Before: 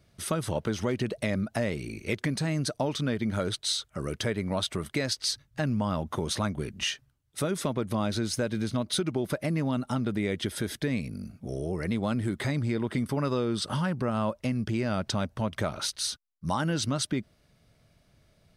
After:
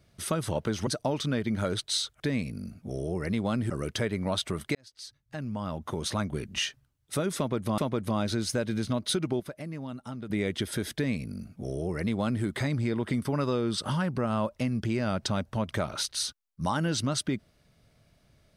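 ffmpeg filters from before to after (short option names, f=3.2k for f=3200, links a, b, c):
-filter_complex "[0:a]asplit=8[a][b][c][d][e][f][g][h];[a]atrim=end=0.872[i];[b]atrim=start=2.618:end=3.952[j];[c]atrim=start=10.778:end=12.282[k];[d]atrim=start=3.948:end=5,asetpts=PTS-STARTPTS,afade=t=out:st=1.048:d=0.004:c=hsin[l];[e]atrim=start=5:end=8.032,asetpts=PTS-STARTPTS,afade=t=in:d=1.59[m];[f]atrim=start=7.618:end=9.242[n];[g]atrim=start=9.238:end=10.142,asetpts=PTS-STARTPTS,volume=-9.5dB[o];[h]atrim=start=10.138[p];[i][j]acrossfade=d=0.004:c1=hsin:c2=hsin[q];[q][k]acrossfade=d=0.004:c1=hsin:c2=hsin[r];[l][m]concat=n=2:v=0:a=1[s];[r][s]acrossfade=d=0.004:c1=hsin:c2=hsin[t];[t][n]acrossfade=d=0.004:c1=hsin:c2=hsin[u];[u][o]acrossfade=d=0.004:c1=hsin:c2=hsin[v];[v][p]acrossfade=d=0.004:c1=hsin:c2=hsin"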